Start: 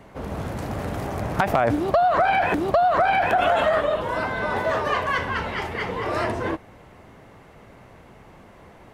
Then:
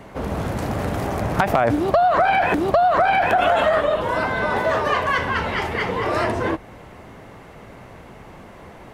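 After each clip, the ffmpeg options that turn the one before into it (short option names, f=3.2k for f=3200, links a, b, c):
-filter_complex "[0:a]bandreject=f=47.03:t=h:w=4,bandreject=f=94.06:t=h:w=4,bandreject=f=141.09:t=h:w=4,asplit=2[a][b];[b]acompressor=threshold=-28dB:ratio=6,volume=0.5dB[c];[a][c]amix=inputs=2:normalize=0"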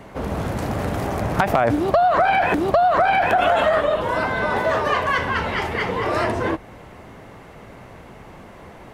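-af anull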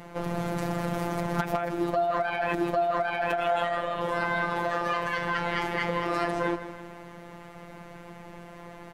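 -af "acompressor=threshold=-21dB:ratio=6,aecho=1:1:163|326|489|652|815:0.237|0.116|0.0569|0.0279|0.0137,afftfilt=real='hypot(re,im)*cos(PI*b)':imag='0':win_size=1024:overlap=0.75"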